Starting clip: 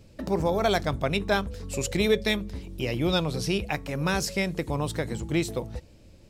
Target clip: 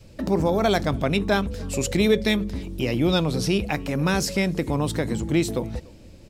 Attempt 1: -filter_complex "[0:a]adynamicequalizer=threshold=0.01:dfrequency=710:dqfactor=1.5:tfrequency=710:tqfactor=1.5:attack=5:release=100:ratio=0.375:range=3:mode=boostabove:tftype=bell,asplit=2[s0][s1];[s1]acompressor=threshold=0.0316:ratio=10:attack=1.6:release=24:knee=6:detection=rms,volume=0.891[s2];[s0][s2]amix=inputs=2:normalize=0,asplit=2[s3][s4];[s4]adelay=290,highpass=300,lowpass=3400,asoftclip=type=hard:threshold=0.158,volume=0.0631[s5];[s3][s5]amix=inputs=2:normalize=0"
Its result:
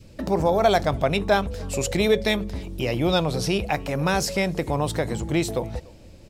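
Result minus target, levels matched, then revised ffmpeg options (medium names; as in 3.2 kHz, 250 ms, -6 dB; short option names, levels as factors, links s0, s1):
1 kHz band +4.0 dB
-filter_complex "[0:a]adynamicequalizer=threshold=0.01:dfrequency=250:dqfactor=1.5:tfrequency=250:tqfactor=1.5:attack=5:release=100:ratio=0.375:range=3:mode=boostabove:tftype=bell,asplit=2[s0][s1];[s1]acompressor=threshold=0.0316:ratio=10:attack=1.6:release=24:knee=6:detection=rms,volume=0.891[s2];[s0][s2]amix=inputs=2:normalize=0,asplit=2[s3][s4];[s4]adelay=290,highpass=300,lowpass=3400,asoftclip=type=hard:threshold=0.158,volume=0.0631[s5];[s3][s5]amix=inputs=2:normalize=0"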